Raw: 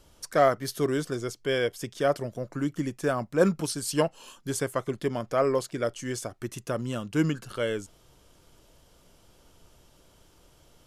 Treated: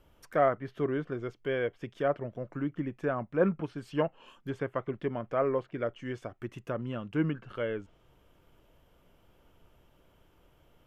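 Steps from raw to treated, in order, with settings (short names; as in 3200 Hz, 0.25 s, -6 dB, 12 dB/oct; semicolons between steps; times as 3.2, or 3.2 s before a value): treble ducked by the level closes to 2500 Hz, closed at -25.5 dBFS; band shelf 6400 Hz -14 dB; gain -4 dB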